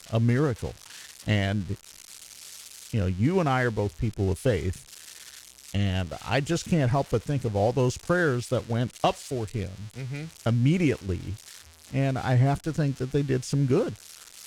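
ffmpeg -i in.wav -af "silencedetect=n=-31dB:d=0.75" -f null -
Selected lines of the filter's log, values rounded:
silence_start: 1.74
silence_end: 2.94 | silence_duration: 1.19
silence_start: 4.72
silence_end: 5.75 | silence_duration: 1.03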